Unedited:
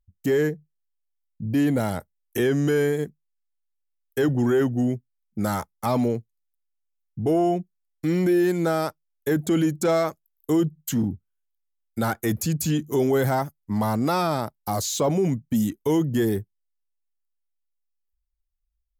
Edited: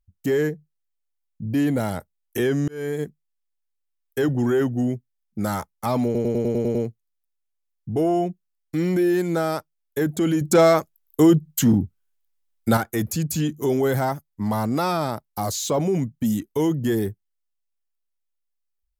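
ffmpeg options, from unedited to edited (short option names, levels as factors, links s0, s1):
-filter_complex "[0:a]asplit=11[s0][s1][s2][s3][s4][s5][s6][s7][s8][s9][s10];[s0]atrim=end=2.68,asetpts=PTS-STARTPTS,afade=t=out:st=2.676:d=0.004:c=hsin[s11];[s1]atrim=start=2.68:end=6.152,asetpts=PTS-STARTPTS,afade=t=in:d=0.34[s12];[s2]atrim=start=6.048:end=6.152[s13];[s3]atrim=start=6.048:end=6.152[s14];[s4]atrim=start=6.048:end=6.152[s15];[s5]atrim=start=6.048:end=6.152[s16];[s6]atrim=start=6.048:end=6.152[s17];[s7]atrim=start=6.048:end=6.152[s18];[s8]atrim=start=6.048:end=9.712[s19];[s9]atrim=start=9.708:end=12.072,asetpts=PTS-STARTPTS,volume=2.11[s20];[s10]atrim=start=12.068[s21];[s11][s12]concat=n=2:v=0:a=1[s22];[s22][s13]acrossfade=d=0.004:c1=hsin:c2=hsin[s23];[s23][s14]acrossfade=d=0.004:c1=hsin:c2=hsin[s24];[s24][s15]acrossfade=d=0.004:c1=hsin:c2=hsin[s25];[s25][s16]acrossfade=d=0.004:c1=hsin:c2=hsin[s26];[s26][s17]acrossfade=d=0.004:c1=hsin:c2=hsin[s27];[s27][s18]acrossfade=d=0.004:c1=hsin:c2=hsin[s28];[s28][s19]acrossfade=d=0.004:c1=hsin:c2=hsin[s29];[s29][s20]acrossfade=d=0.004:c1=hsin:c2=hsin[s30];[s30][s21]acrossfade=d=0.004:c1=hsin:c2=hsin"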